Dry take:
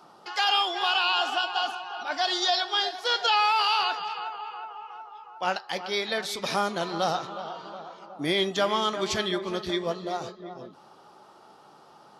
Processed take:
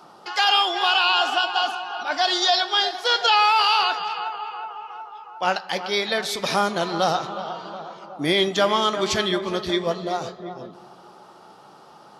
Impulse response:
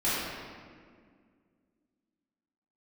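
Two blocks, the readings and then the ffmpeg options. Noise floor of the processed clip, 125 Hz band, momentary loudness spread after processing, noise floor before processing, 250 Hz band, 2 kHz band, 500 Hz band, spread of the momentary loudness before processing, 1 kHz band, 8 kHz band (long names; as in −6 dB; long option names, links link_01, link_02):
−48 dBFS, +5.5 dB, 17 LU, −54 dBFS, +5.0 dB, +5.5 dB, +5.5 dB, 17 LU, +5.0 dB, +5.0 dB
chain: -filter_complex "[0:a]asplit=2[link_01][link_02];[1:a]atrim=start_sample=2205,asetrate=27342,aresample=44100[link_03];[link_02][link_03]afir=irnorm=-1:irlink=0,volume=-33dB[link_04];[link_01][link_04]amix=inputs=2:normalize=0,volume=5dB"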